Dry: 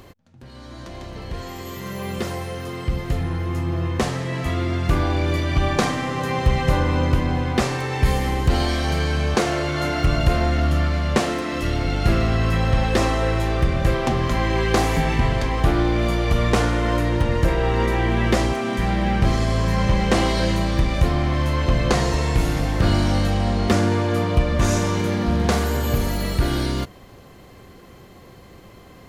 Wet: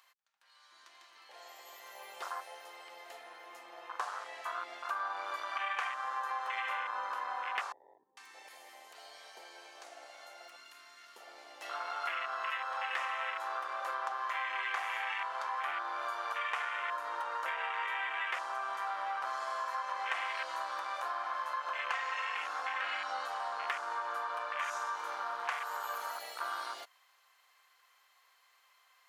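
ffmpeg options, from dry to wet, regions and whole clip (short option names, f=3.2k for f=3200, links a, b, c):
-filter_complex "[0:a]asettb=1/sr,asplit=3[a][b][c];[a]atrim=end=7.724[d];[b]atrim=start=7.72:end=11.62,asetpts=PTS-STARTPTS,afade=t=in:d=0.004:c=qsin,afade=t=out:st=3.896:d=0.004:c=qsin,acrossover=split=540|5100[e][f][g];[e]acompressor=threshold=-26dB:ratio=4[h];[f]acompressor=threshold=-40dB:ratio=4[i];[g]acompressor=threshold=-48dB:ratio=4[j];[h][i][j]amix=inputs=3:normalize=0,acrossover=split=530[k][l];[l]adelay=450[m];[k][m]amix=inputs=2:normalize=0,atrim=end_sample=171990[n];[c]atrim=start=11.616[o];[d][n]acrossfade=d=0.004:c1=hsin:c2=qsin[p];[p][o]acrossfade=d=0.004:c1=qsin:c2=hsin,asettb=1/sr,asplit=3[q][r][s];[q]atrim=end=21.934[t];[r]atrim=start=21.93:end=23.26,asetpts=PTS-STARTPTS,afade=t=in:d=0.004:c=qsin,afade=t=out:st=1.326:d=0.004:c=qsin,lowpass=7.5k,aecho=1:1:3.8:0.8,atrim=end_sample=58653[u];[s]atrim=start=23.256[v];[t][u]acrossfade=d=0.004:c1=hsin:c2=qsin[w];[w][v]acrossfade=d=0.004:c1=qsin:c2=hsin,afwtdn=0.0447,highpass=f=1k:w=0.5412,highpass=f=1k:w=1.3066,acompressor=threshold=-36dB:ratio=5,volume=2.5dB"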